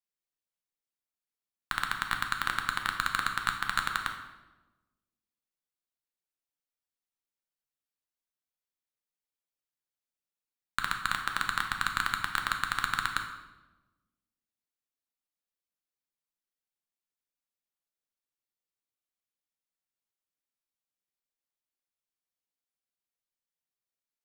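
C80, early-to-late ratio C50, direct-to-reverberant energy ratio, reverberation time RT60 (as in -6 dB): 9.0 dB, 6.5 dB, 3.0 dB, 1.2 s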